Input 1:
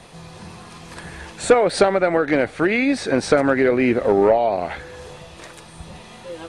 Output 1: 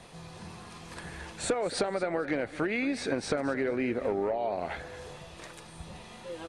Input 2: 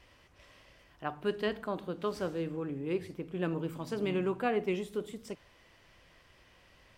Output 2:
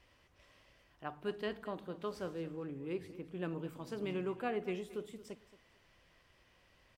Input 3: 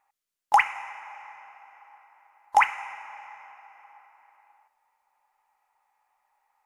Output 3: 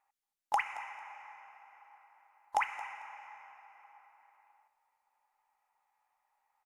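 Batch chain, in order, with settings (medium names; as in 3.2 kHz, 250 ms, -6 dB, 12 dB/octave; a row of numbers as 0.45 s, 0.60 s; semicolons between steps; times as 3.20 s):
compression 6:1, threshold -20 dBFS; on a send: feedback delay 224 ms, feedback 24%, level -16.5 dB; on the sum: trim -6.5 dB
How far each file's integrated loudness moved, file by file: -13.0 LU, -6.5 LU, -13.5 LU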